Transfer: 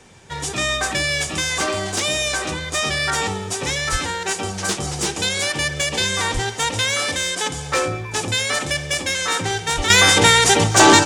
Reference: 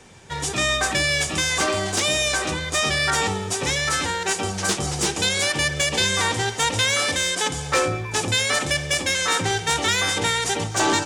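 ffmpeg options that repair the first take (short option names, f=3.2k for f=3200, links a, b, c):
-filter_complex "[0:a]asplit=3[a][b][c];[a]afade=t=out:st=3.91:d=0.02[d];[b]highpass=f=140:w=0.5412,highpass=f=140:w=1.3066,afade=t=in:st=3.91:d=0.02,afade=t=out:st=4.03:d=0.02[e];[c]afade=t=in:st=4.03:d=0.02[f];[d][e][f]amix=inputs=3:normalize=0,asplit=3[g][h][i];[g]afade=t=out:st=6.33:d=0.02[j];[h]highpass=f=140:w=0.5412,highpass=f=140:w=1.3066,afade=t=in:st=6.33:d=0.02,afade=t=out:st=6.45:d=0.02[k];[i]afade=t=in:st=6.45:d=0.02[l];[j][k][l]amix=inputs=3:normalize=0,asplit=3[m][n][o];[m]afade=t=out:st=9.76:d=0.02[p];[n]highpass=f=140:w=0.5412,highpass=f=140:w=1.3066,afade=t=in:st=9.76:d=0.02,afade=t=out:st=9.88:d=0.02[q];[o]afade=t=in:st=9.88:d=0.02[r];[p][q][r]amix=inputs=3:normalize=0,asetnsamples=n=441:p=0,asendcmd='9.9 volume volume -9.5dB',volume=0dB"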